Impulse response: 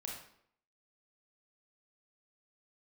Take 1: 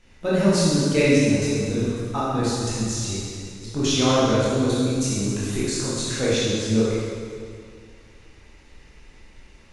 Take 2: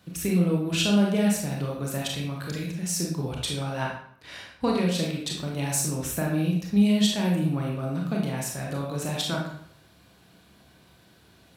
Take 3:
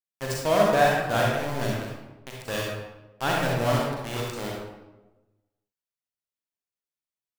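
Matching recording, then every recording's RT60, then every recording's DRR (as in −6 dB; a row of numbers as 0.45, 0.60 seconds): 2; 2.2, 0.65, 1.1 seconds; −9.0, −2.0, −3.5 decibels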